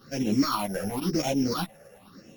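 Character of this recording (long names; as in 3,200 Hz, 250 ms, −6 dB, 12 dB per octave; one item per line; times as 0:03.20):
a buzz of ramps at a fixed pitch in blocks of 8 samples
phaser sweep stages 6, 0.95 Hz, lowest notch 270–1,300 Hz
tremolo saw up 9.1 Hz, depth 40%
a shimmering, thickened sound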